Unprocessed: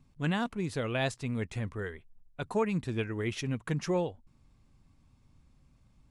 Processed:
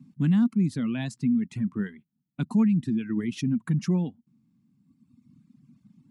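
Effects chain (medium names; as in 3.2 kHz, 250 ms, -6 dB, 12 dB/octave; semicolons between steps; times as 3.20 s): resonant low shelf 340 Hz +13.5 dB, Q 3; peak limiter -14.5 dBFS, peak gain reduction 9 dB; high-pass 150 Hz 24 dB/octave; reverb removal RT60 2 s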